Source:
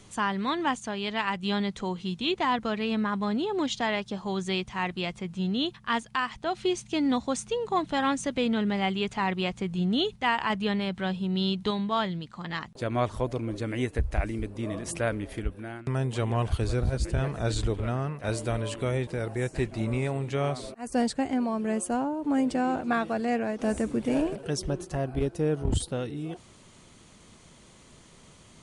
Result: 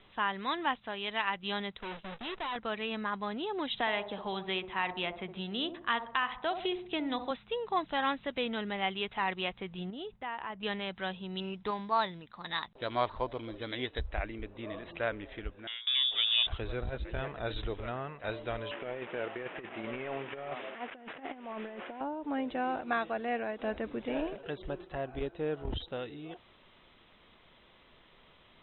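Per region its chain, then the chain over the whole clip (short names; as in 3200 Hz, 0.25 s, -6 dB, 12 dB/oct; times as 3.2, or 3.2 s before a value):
1.77–2.56 half-waves squared off + gate -37 dBFS, range -12 dB + tube stage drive 31 dB, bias 0.35
3.73–7.31 band-limited delay 64 ms, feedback 41%, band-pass 510 Hz, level -7.5 dB + three-band squash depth 70%
9.9–10.63 LPF 1100 Hz 6 dB/oct + compressor 3:1, threshold -32 dBFS
11.4–14.08 dynamic EQ 950 Hz, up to +6 dB, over -44 dBFS, Q 3.5 + careless resampling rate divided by 8×, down filtered, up zero stuff
15.67–16.47 air absorption 71 m + inverted band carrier 3600 Hz
18.71–22.01 delta modulation 16 kbps, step -36.5 dBFS + HPF 200 Hz + negative-ratio compressor -32 dBFS, ratio -0.5
whole clip: Chebyshev low-pass 3900 Hz, order 10; bell 130 Hz -12 dB 2.9 oct; gain -1.5 dB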